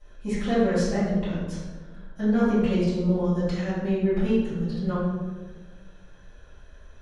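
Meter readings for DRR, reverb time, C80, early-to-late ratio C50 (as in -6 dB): -13.5 dB, 1.3 s, 1.5 dB, -1.5 dB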